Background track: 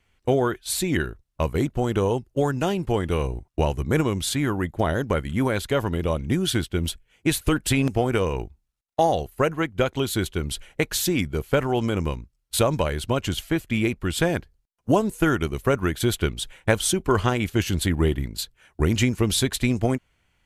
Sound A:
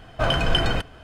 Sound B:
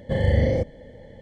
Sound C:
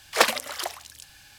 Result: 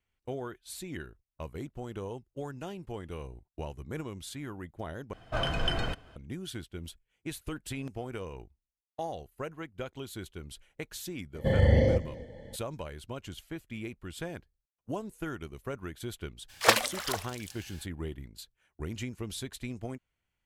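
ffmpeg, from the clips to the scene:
-filter_complex "[0:a]volume=-16.5dB[a];[2:a]aecho=1:1:268:0.106[b];[a]asplit=2[c][d];[c]atrim=end=5.134[e];[1:a]atrim=end=1.03,asetpts=PTS-STARTPTS,volume=-9dB[f];[d]atrim=start=6.156[g];[b]atrim=end=1.21,asetpts=PTS-STARTPTS,volume=-2.5dB,afade=t=in:d=0.004:c=hsin,afade=t=out:st=1.206:d=0.004:c=hsin,adelay=11350[h];[3:a]atrim=end=1.38,asetpts=PTS-STARTPTS,volume=-2.5dB,afade=t=in:d=0.02,afade=t=out:st=1.36:d=0.02,adelay=16480[i];[e][f]acrossfade=d=0.004:c1=hsin:c2=hsin[j];[j][g]acrossfade=d=0.004:c1=hsin:c2=hsin[k];[k][h][i]amix=inputs=3:normalize=0"

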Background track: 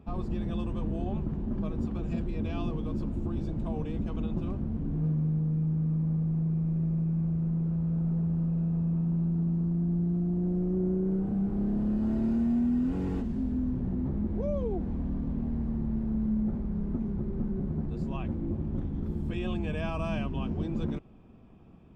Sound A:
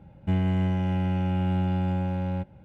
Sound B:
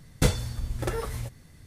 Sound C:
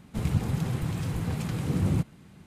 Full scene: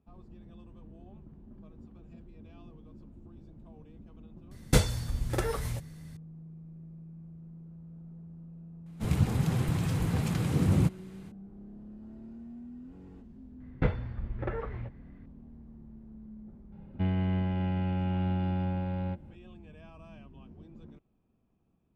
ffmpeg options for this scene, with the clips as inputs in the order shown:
-filter_complex "[2:a]asplit=2[a][b];[0:a]volume=-19dB[c];[3:a]dynaudnorm=f=110:g=3:m=9.5dB[d];[b]lowpass=f=2.3k:w=0.5412,lowpass=f=2.3k:w=1.3066[e];[1:a]aresample=11025,aresample=44100[f];[a]atrim=end=1.66,asetpts=PTS-STARTPTS,volume=-0.5dB,afade=t=in:d=0.004:c=hsin,afade=t=out:st=1.656:d=0.004:c=hsin,adelay=4510[g];[d]atrim=end=2.46,asetpts=PTS-STARTPTS,volume=-8.5dB,afade=t=in:d=0.004:c=hsin,afade=t=out:st=2.456:d=0.004:c=hsin,adelay=8860[h];[e]atrim=end=1.66,asetpts=PTS-STARTPTS,volume=-4.5dB,afade=t=in:d=0.004:c=hsin,afade=t=out:st=1.656:d=0.004:c=hsin,adelay=13600[i];[f]atrim=end=2.64,asetpts=PTS-STARTPTS,volume=-4.5dB,afade=t=in:d=0.004:c=hsin,afade=t=out:st=2.636:d=0.004:c=hsin,adelay=16720[j];[c][g][h][i][j]amix=inputs=5:normalize=0"

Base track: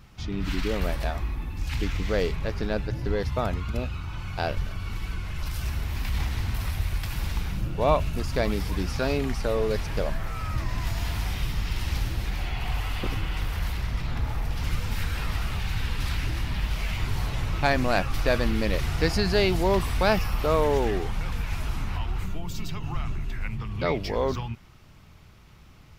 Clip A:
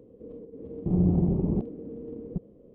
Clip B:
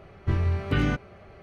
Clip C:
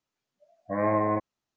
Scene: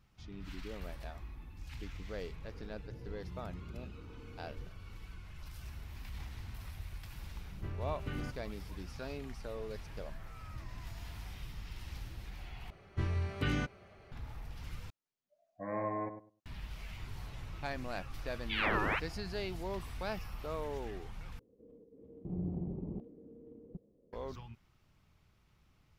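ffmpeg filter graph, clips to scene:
-filter_complex "[1:a]asplit=2[a][b];[2:a]asplit=2[c][d];[3:a]asplit=2[e][f];[0:a]volume=-17dB[g];[a]acompressor=threshold=-33dB:ratio=6:attack=3.2:release=140:knee=1:detection=peak[h];[d]highshelf=f=2.9k:g=8.5[i];[e]asplit=2[j][k];[k]adelay=101,lowpass=f=910:p=1,volume=-7.5dB,asplit=2[l][m];[m]adelay=101,lowpass=f=910:p=1,volume=0.21,asplit=2[n][o];[o]adelay=101,lowpass=f=910:p=1,volume=0.21[p];[j][l][n][p]amix=inputs=4:normalize=0[q];[f]aeval=exprs='val(0)*sin(2*PI*1800*n/s+1800*0.65/1.5*sin(2*PI*1.5*n/s))':c=same[r];[g]asplit=4[s][t][u][v];[s]atrim=end=12.704[w];[i]atrim=end=1.42,asetpts=PTS-STARTPTS,volume=-9.5dB[x];[t]atrim=start=14.116:end=14.904[y];[q]atrim=end=1.56,asetpts=PTS-STARTPTS,volume=-12dB[z];[u]atrim=start=16.456:end=21.394[aa];[b]atrim=end=2.74,asetpts=PTS-STARTPTS,volume=-15dB[ab];[v]atrim=start=24.126[ac];[h]atrim=end=2.74,asetpts=PTS-STARTPTS,volume=-15.5dB,afade=t=in:d=0.004:c=hsin,afade=t=out:st=2.736:d=0.004:c=hsin,adelay=2310[ad];[c]atrim=end=1.42,asetpts=PTS-STARTPTS,volume=-16.5dB,afade=t=in:d=0.004:c=hsin,afade=t=out:st=1.416:d=0.004:c=hsin,adelay=7350[ae];[r]atrim=end=1.56,asetpts=PTS-STARTPTS,volume=-4.5dB,afade=t=in:d=0.004:c=hsin,afade=t=out:st=1.556:d=0.004:c=hsin,adelay=784980S[af];[w][x]acrossfade=d=0.004:c1=hsin:c2=hsin[ag];[ag][y]acrossfade=d=0.004:c1=hsin:c2=hsin[ah];[ah][z]acrossfade=d=0.004:c1=hsin:c2=hsin[ai];[ai][aa]acrossfade=d=0.004:c1=hsin:c2=hsin[aj];[aj][ab]acrossfade=d=0.004:c1=hsin:c2=hsin[ak];[ak][ac]acrossfade=d=0.004:c1=hsin:c2=hsin[al];[al][ad][ae][af]amix=inputs=4:normalize=0"

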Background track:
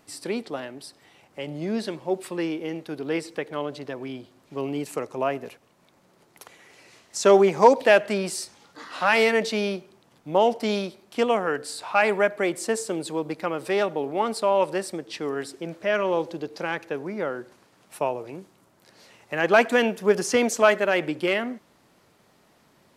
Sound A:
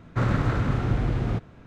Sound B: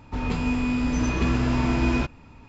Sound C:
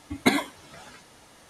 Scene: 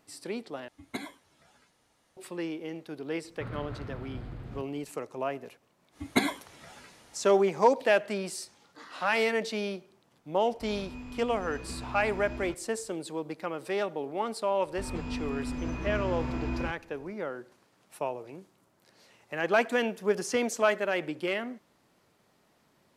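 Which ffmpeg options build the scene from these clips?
-filter_complex "[3:a]asplit=2[a][b];[2:a]asplit=2[c][d];[0:a]volume=-7dB[e];[1:a]aresample=11025,aresample=44100[f];[d]acrossover=split=2500[g][h];[h]acompressor=threshold=-42dB:ratio=4:attack=1:release=60[i];[g][i]amix=inputs=2:normalize=0[j];[e]asplit=2[k][l];[k]atrim=end=0.684[m];[a]atrim=end=1.49,asetpts=PTS-STARTPTS,volume=-16.5dB[n];[l]atrim=start=2.166[o];[f]atrim=end=1.66,asetpts=PTS-STARTPTS,volume=-16.5dB,afade=t=in:d=0.004:c=hsin,afade=t=out:st=1.656:d=0.004:c=hsin,adelay=3240[p];[b]atrim=end=1.49,asetpts=PTS-STARTPTS,volume=-4.5dB,afade=t=in:d=0.1,afade=t=out:st=1.39:d=0.1,adelay=5900[q];[c]atrim=end=2.48,asetpts=PTS-STARTPTS,volume=-18dB,afade=t=in:d=0.004:c=hsin,afade=t=out:st=2.476:d=0.004:c=hsin,adelay=10480[r];[j]atrim=end=2.48,asetpts=PTS-STARTPTS,volume=-10.5dB,afade=t=in:d=0.004:c=hsin,afade=t=out:st=2.476:d=0.004:c=hsin,adelay=14650[s];[m][n]acrossfade=d=0.004:c1=hsin:c2=hsin[t];[t][o]acrossfade=d=0.004:c1=hsin:c2=hsin[u];[u][p][q][r][s]amix=inputs=5:normalize=0"

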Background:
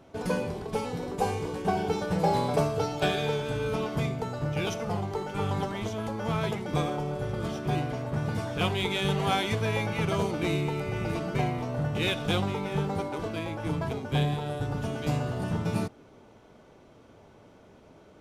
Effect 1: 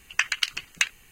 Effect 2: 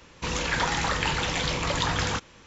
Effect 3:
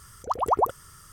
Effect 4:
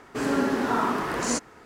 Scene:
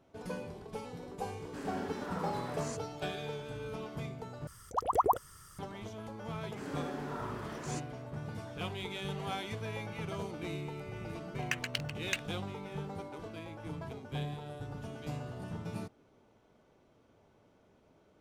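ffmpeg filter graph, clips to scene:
-filter_complex "[4:a]asplit=2[a][b];[0:a]volume=-11.5dB[c];[1:a]adynamicsmooth=sensitivity=5:basefreq=1.1k[d];[c]asplit=2[e][f];[e]atrim=end=4.474[g];[3:a]atrim=end=1.12,asetpts=PTS-STARTPTS,volume=-5dB[h];[f]atrim=start=5.586[i];[a]atrim=end=1.65,asetpts=PTS-STARTPTS,volume=-17dB,afade=t=in:d=0.004:c=hsin,afade=t=out:st=1.646:d=0.004:c=hsin,adelay=1380[j];[b]atrim=end=1.65,asetpts=PTS-STARTPTS,volume=-17dB,afade=t=in:d=0.004:c=hsin,afade=t=out:st=1.646:d=0.004:c=hsin,adelay=6410[k];[d]atrim=end=1.11,asetpts=PTS-STARTPTS,volume=-11.5dB,afade=t=in:d=0.004:c=hsin,afade=t=out:st=1.106:d=0.004:c=hsin,adelay=11320[l];[g][h]acrossfade=d=0.004:c1=hsin:c2=hsin[m];[m][i]acrossfade=d=0.004:c1=hsin:c2=hsin[n];[n][j][k][l]amix=inputs=4:normalize=0"

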